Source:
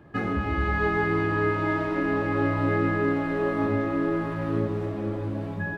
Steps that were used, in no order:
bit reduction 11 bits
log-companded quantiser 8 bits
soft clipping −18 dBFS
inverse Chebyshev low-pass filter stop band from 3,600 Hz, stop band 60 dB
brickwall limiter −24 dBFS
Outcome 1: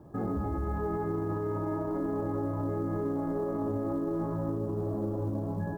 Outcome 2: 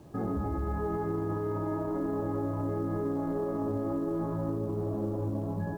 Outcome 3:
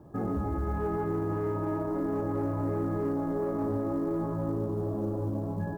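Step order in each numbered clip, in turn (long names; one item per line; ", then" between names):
bit reduction, then inverse Chebyshev low-pass filter, then log-companded quantiser, then brickwall limiter, then soft clipping
inverse Chebyshev low-pass filter, then brickwall limiter, then log-companded quantiser, then soft clipping, then bit reduction
bit reduction, then inverse Chebyshev low-pass filter, then soft clipping, then log-companded quantiser, then brickwall limiter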